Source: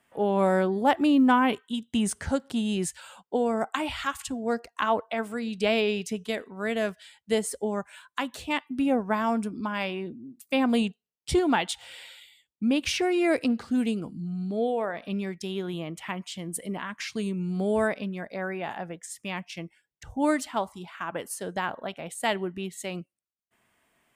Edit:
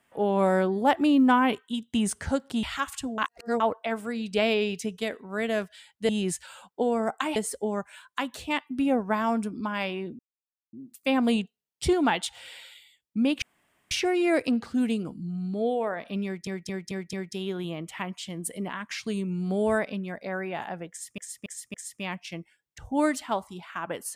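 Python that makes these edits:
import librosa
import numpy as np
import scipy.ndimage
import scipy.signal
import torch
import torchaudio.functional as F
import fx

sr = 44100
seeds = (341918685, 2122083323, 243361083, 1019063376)

y = fx.edit(x, sr, fx.move(start_s=2.63, length_s=1.27, to_s=7.36),
    fx.reverse_span(start_s=4.45, length_s=0.42),
    fx.insert_silence(at_s=10.19, length_s=0.54),
    fx.insert_room_tone(at_s=12.88, length_s=0.49),
    fx.stutter(start_s=15.22, slice_s=0.22, count=5),
    fx.repeat(start_s=18.99, length_s=0.28, count=4), tone=tone)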